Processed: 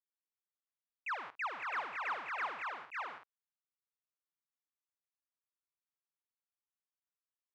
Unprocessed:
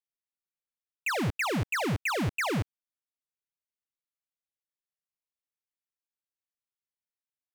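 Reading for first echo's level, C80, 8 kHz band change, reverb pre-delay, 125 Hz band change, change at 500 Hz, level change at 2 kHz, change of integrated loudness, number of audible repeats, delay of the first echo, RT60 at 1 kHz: -16.5 dB, none, under -25 dB, none, under -40 dB, -16.5 dB, -7.0 dB, -10.0 dB, 3, 51 ms, none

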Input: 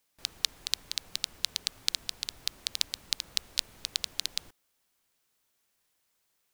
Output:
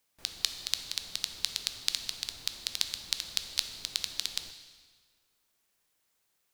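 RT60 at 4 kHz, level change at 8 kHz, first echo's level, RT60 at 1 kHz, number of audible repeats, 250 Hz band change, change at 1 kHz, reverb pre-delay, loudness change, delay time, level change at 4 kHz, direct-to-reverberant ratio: 1.4 s, -0.5 dB, none, 1.7 s, none, -0.5 dB, 0.0 dB, 9 ms, -0.5 dB, none, -0.5 dB, 7.5 dB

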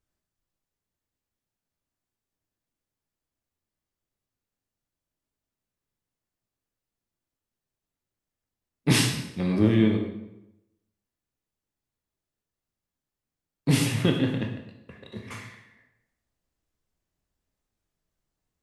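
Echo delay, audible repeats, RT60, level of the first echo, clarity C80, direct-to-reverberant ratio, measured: none, none, 0.90 s, none, 8.5 dB, 2.0 dB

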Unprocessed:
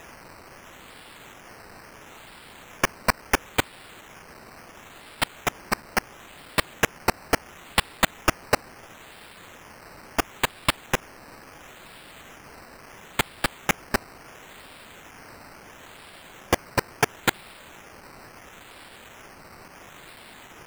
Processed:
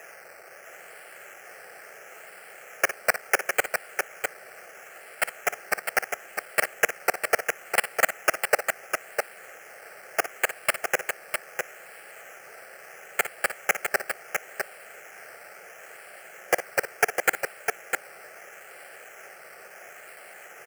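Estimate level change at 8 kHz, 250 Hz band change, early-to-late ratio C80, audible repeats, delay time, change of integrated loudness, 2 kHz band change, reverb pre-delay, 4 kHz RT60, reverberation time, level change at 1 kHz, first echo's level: +1.5 dB, -13.0 dB, none, 2, 57 ms, -1.0 dB, +3.0 dB, none, none, none, -1.5 dB, -12.0 dB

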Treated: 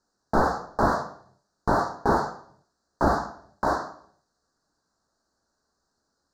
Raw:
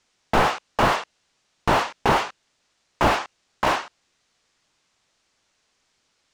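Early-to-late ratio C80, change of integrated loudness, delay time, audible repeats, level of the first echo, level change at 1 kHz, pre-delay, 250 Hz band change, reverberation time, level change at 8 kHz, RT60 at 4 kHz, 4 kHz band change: 14.0 dB, -3.5 dB, none, none, none, -3.0 dB, 3 ms, +0.5 dB, 0.60 s, -8.5 dB, 0.65 s, -14.5 dB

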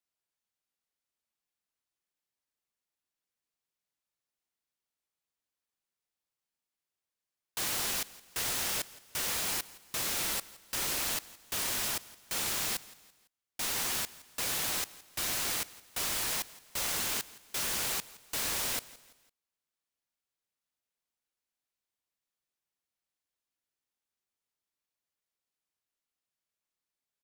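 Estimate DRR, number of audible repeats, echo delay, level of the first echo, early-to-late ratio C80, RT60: none, 2, 0.168 s, -20.0 dB, none, none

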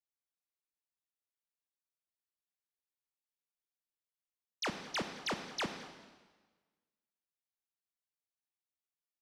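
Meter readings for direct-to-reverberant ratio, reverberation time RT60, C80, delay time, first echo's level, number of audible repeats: 6.5 dB, 1.3 s, 9.0 dB, 0.218 s, -20.5 dB, 1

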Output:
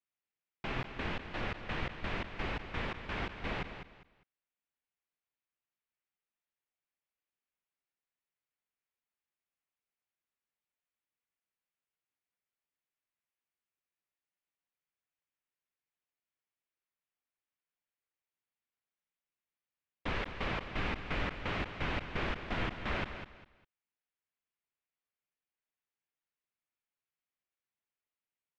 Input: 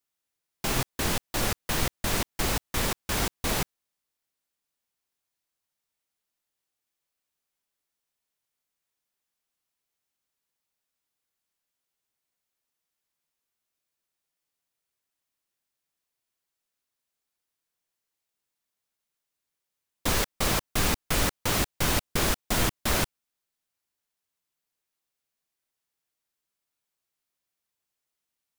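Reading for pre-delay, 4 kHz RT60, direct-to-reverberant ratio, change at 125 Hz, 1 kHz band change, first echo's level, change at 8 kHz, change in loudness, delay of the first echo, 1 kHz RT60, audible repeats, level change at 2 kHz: none, none, none, -9.0 dB, -8.0 dB, -9.5 dB, -34.0 dB, -10.5 dB, 0.201 s, none, 3, -6.0 dB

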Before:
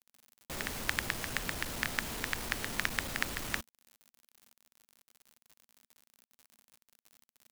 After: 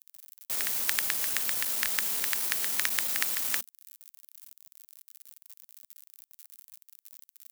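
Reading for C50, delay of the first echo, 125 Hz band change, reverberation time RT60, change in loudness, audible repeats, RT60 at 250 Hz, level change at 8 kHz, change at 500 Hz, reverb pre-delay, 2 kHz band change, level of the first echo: none, none, under -10 dB, none, +8.5 dB, none, none, +10.5 dB, -4.0 dB, none, +1.0 dB, none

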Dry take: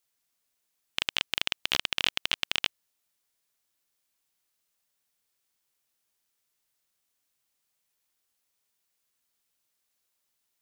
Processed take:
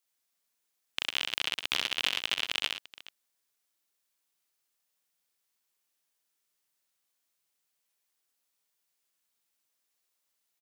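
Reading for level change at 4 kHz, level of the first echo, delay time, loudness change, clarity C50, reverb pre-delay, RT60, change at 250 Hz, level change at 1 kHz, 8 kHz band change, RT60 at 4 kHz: -1.5 dB, -3.5 dB, 65 ms, -2.0 dB, none, none, none, -3.5 dB, -1.5 dB, -1.5 dB, none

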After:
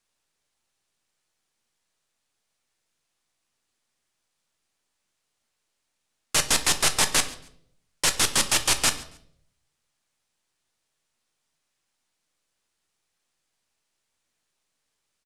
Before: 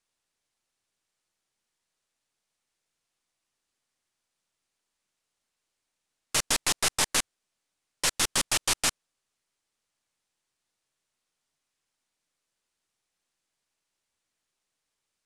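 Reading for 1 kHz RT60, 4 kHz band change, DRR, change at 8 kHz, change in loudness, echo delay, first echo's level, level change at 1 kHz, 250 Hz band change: 0.60 s, +4.0 dB, 8.0 dB, +4.0 dB, +4.0 dB, 0.139 s, -22.5 dB, +4.0 dB, +4.5 dB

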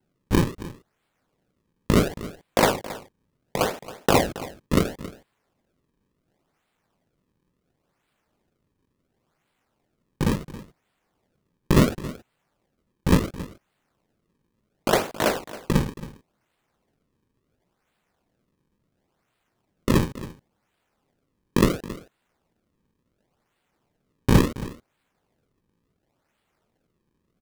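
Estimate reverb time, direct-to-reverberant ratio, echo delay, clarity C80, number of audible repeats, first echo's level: none, none, 0.273 s, none, 1, -16.5 dB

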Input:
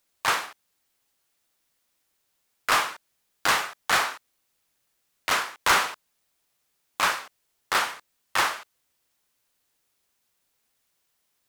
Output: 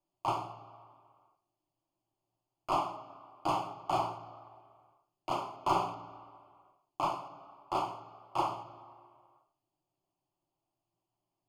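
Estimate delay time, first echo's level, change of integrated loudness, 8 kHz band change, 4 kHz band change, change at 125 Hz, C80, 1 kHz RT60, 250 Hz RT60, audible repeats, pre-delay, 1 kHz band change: none, none, -10.5 dB, -23.0 dB, -18.0 dB, +2.5 dB, 14.0 dB, 2.1 s, 1.7 s, none, 3 ms, -5.5 dB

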